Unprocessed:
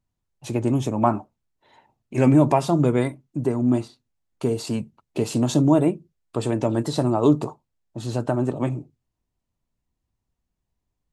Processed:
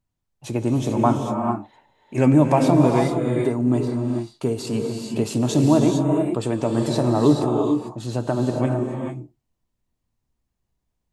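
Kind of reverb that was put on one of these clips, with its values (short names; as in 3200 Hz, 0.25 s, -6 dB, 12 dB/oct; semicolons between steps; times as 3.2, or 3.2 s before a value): non-linear reverb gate 0.47 s rising, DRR 2 dB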